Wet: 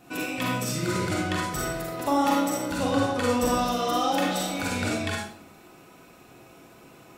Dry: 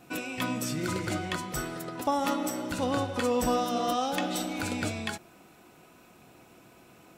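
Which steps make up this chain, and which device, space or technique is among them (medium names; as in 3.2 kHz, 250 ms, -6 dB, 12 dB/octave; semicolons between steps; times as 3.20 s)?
bathroom (reverberation RT60 0.60 s, pre-delay 37 ms, DRR -3 dB)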